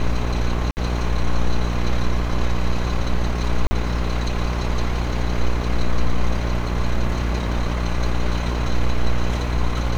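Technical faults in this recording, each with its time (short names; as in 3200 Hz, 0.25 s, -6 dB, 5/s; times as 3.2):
buzz 60 Hz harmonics 27 -23 dBFS
0.71–0.77 gap 59 ms
3.67–3.71 gap 40 ms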